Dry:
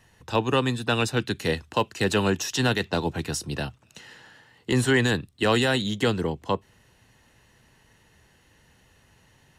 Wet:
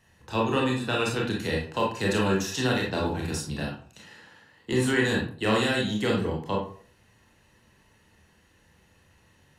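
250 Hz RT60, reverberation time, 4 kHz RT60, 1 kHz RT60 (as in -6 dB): 0.45 s, 0.50 s, 0.30 s, 0.45 s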